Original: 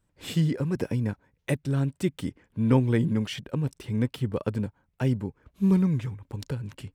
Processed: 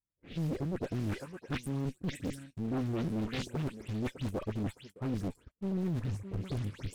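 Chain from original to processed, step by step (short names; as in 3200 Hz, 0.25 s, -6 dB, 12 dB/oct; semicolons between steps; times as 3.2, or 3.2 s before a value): spectral delay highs late, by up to 0.147 s; added harmonics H 6 -37 dB, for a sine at -11 dBFS; spectral gain 1.06–2.53, 340–1500 Hz -12 dB; thinning echo 0.611 s, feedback 15%, high-pass 790 Hz, level -9 dB; in parallel at -11.5 dB: Schmitt trigger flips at -29 dBFS; on the sum: gate -50 dBFS, range -20 dB; rotary speaker horn 0.6 Hz, later 6.3 Hz, at 3.19; reverse; compressor 6:1, threshold -34 dBFS, peak gain reduction 16.5 dB; reverse; sample leveller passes 1; Doppler distortion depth 0.87 ms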